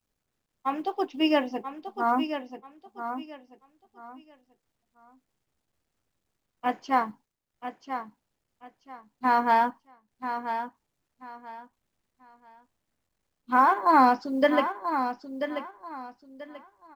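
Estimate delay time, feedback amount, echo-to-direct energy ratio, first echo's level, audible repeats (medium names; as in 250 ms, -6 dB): 986 ms, 25%, -8.5 dB, -9.0 dB, 3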